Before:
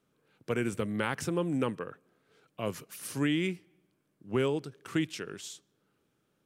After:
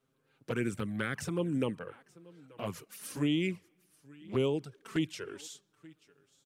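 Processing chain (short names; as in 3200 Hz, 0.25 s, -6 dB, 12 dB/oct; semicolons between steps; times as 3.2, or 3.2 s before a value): echo 0.881 s -23 dB; envelope flanger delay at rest 7.7 ms, full sweep at -24.5 dBFS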